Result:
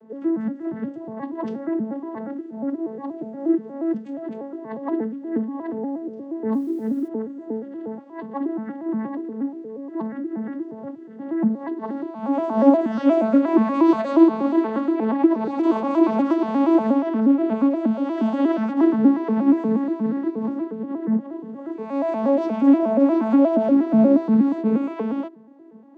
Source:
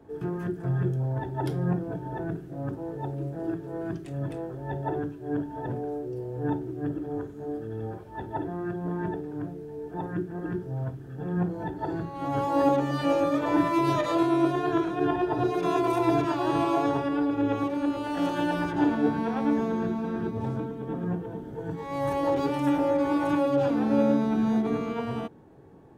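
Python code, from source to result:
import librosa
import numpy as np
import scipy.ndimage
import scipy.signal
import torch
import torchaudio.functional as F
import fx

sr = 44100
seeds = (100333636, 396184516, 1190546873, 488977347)

y = fx.vocoder_arp(x, sr, chord='major triad', root=57, every_ms=119)
y = fx.dmg_noise_colour(y, sr, seeds[0], colour='white', level_db=-70.0, at=(6.52, 7.07), fade=0.02)
y = y * librosa.db_to_amplitude(7.0)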